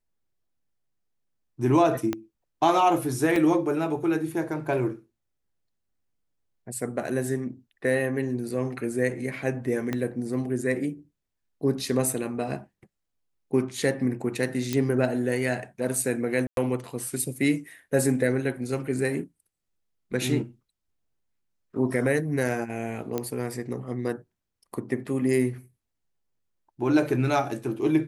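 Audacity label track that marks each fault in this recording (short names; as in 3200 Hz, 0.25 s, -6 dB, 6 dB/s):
2.130000	2.130000	pop -14 dBFS
3.360000	3.360000	gap 2.9 ms
9.930000	9.930000	pop -15 dBFS
14.730000	14.730000	pop -12 dBFS
16.470000	16.570000	gap 0.102 s
23.180000	23.180000	pop -14 dBFS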